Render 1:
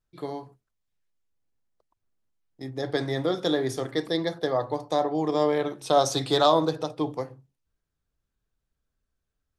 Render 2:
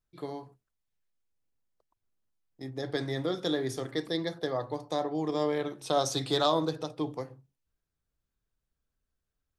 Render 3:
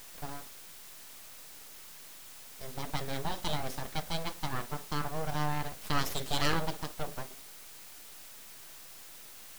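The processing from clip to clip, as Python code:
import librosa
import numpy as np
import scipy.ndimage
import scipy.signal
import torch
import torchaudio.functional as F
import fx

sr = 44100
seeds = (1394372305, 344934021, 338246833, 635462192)

y1 = fx.dynamic_eq(x, sr, hz=750.0, q=0.9, threshold_db=-34.0, ratio=4.0, max_db=-4)
y1 = F.gain(torch.from_numpy(y1), -3.5).numpy()
y2 = fx.quant_dither(y1, sr, seeds[0], bits=8, dither='triangular')
y2 = np.abs(y2)
y2 = F.gain(torch.from_numpy(y2), -1.0).numpy()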